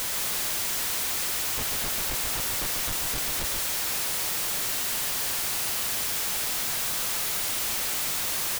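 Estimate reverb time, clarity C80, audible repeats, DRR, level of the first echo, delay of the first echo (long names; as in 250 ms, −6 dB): no reverb audible, no reverb audible, 1, no reverb audible, −5.0 dB, 140 ms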